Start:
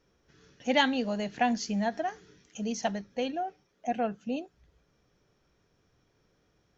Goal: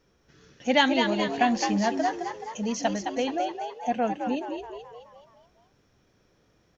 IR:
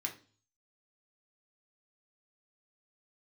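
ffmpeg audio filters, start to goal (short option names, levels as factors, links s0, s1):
-filter_complex "[0:a]asplit=7[s0][s1][s2][s3][s4][s5][s6];[s1]adelay=213,afreqshift=72,volume=0.501[s7];[s2]adelay=426,afreqshift=144,volume=0.251[s8];[s3]adelay=639,afreqshift=216,volume=0.126[s9];[s4]adelay=852,afreqshift=288,volume=0.0624[s10];[s5]adelay=1065,afreqshift=360,volume=0.0313[s11];[s6]adelay=1278,afreqshift=432,volume=0.0157[s12];[s0][s7][s8][s9][s10][s11][s12]amix=inputs=7:normalize=0,volume=1.5"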